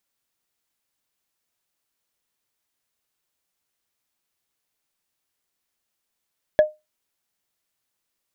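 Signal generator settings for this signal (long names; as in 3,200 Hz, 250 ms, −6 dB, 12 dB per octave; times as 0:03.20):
struck wood, lowest mode 612 Hz, decay 0.21 s, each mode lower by 12 dB, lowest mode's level −7 dB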